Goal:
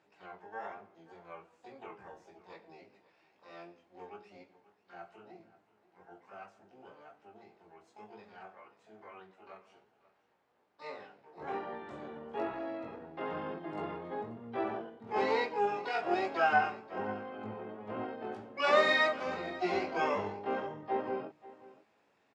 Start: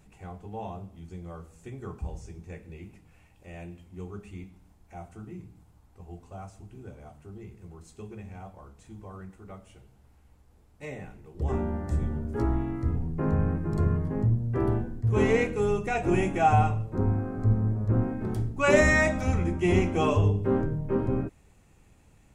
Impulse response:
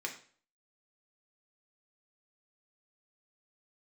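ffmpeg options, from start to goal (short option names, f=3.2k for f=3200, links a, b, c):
-filter_complex "[0:a]highshelf=f=2.9k:g=-10,flanger=delay=18:depth=4.3:speed=1.1,asplit=2[a][b];[b]asetrate=88200,aresample=44100,atempo=0.5,volume=-6dB[c];[a][c]amix=inputs=2:normalize=0,highpass=510,lowpass=5k,asplit=2[d][e];[e]aecho=0:1:535:0.112[f];[d][f]amix=inputs=2:normalize=0"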